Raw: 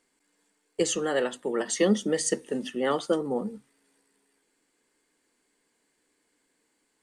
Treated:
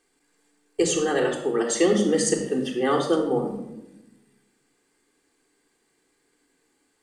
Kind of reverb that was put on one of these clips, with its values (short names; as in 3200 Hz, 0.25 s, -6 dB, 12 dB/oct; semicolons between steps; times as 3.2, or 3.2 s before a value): shoebox room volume 3100 m³, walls furnished, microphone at 3.7 m; gain +1 dB